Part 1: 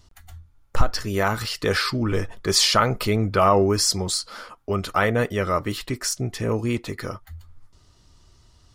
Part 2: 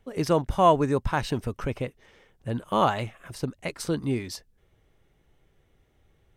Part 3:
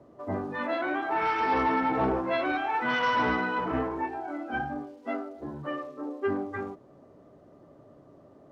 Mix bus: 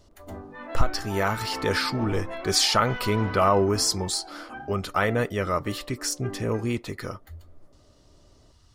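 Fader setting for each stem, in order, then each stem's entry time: -3.0 dB, mute, -8.5 dB; 0.00 s, mute, 0.00 s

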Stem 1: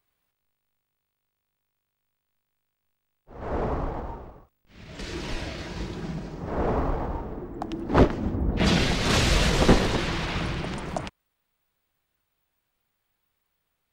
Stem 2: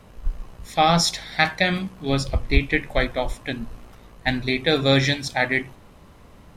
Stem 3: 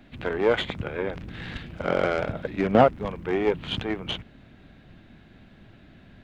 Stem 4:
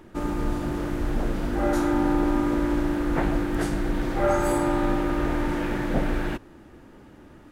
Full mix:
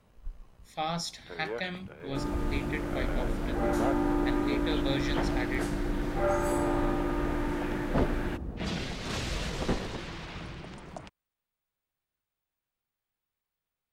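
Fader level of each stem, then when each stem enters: -12.0 dB, -15.0 dB, -15.5 dB, -5.5 dB; 0.00 s, 0.00 s, 1.05 s, 2.00 s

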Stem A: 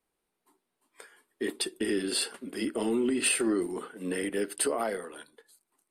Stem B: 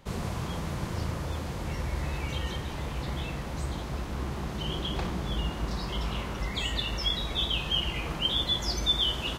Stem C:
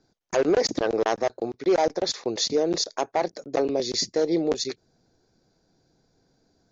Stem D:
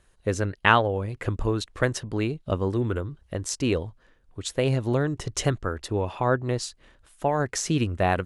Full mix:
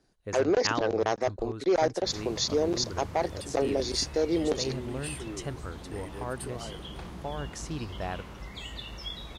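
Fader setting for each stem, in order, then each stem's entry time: -13.0 dB, -9.5 dB, -3.5 dB, -12.5 dB; 1.80 s, 2.00 s, 0.00 s, 0.00 s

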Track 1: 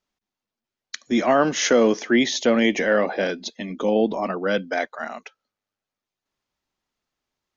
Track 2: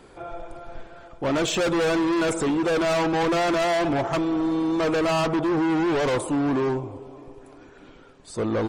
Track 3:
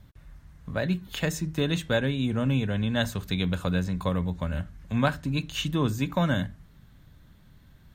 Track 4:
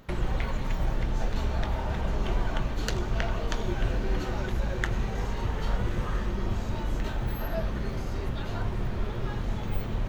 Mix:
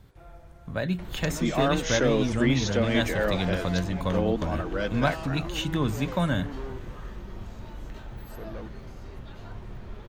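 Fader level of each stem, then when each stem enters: -7.5 dB, -16.5 dB, -1.0 dB, -10.0 dB; 0.30 s, 0.00 s, 0.00 s, 0.90 s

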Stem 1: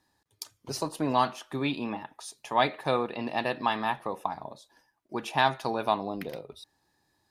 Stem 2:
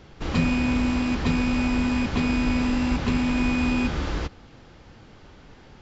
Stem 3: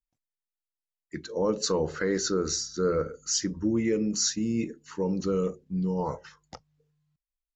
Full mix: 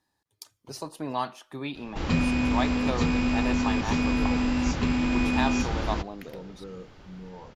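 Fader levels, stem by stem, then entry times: -5.0 dB, -2.0 dB, -14.5 dB; 0.00 s, 1.75 s, 1.35 s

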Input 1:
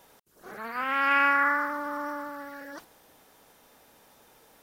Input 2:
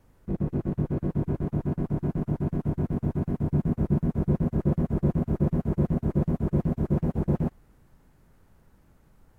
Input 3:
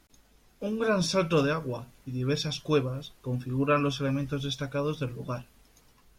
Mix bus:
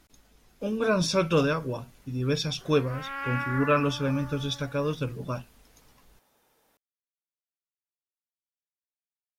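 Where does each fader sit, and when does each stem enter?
-10.0 dB, mute, +1.5 dB; 2.15 s, mute, 0.00 s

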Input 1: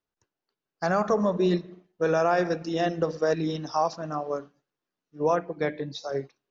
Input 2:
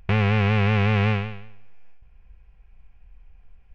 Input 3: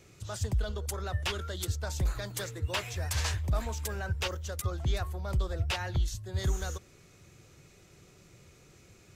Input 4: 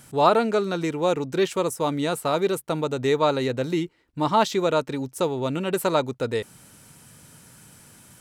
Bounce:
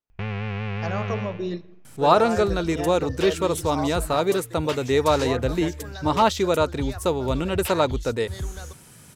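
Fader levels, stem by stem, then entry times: -6.0 dB, -9.0 dB, -1.5 dB, +1.0 dB; 0.00 s, 0.10 s, 1.95 s, 1.85 s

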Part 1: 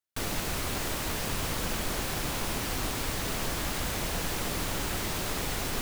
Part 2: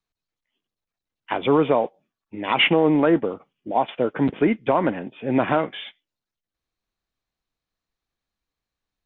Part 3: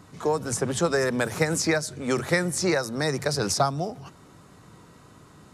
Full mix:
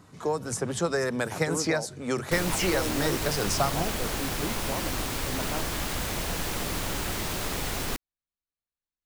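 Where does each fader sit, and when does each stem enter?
+1.0 dB, -15.5 dB, -3.5 dB; 2.15 s, 0.00 s, 0.00 s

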